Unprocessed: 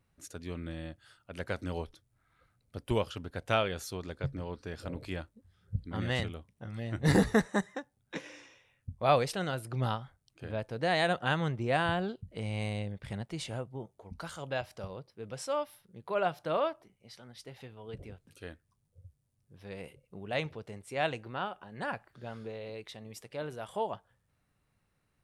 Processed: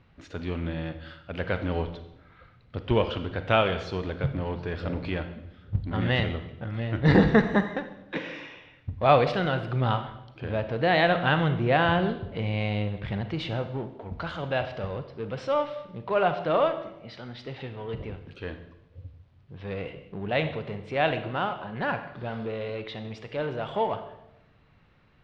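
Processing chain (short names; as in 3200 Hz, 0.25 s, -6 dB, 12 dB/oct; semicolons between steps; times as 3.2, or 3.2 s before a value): G.711 law mismatch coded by mu; LPF 3700 Hz 24 dB/oct; reverb RT60 0.90 s, pre-delay 34 ms, DRR 9 dB; gain +5.5 dB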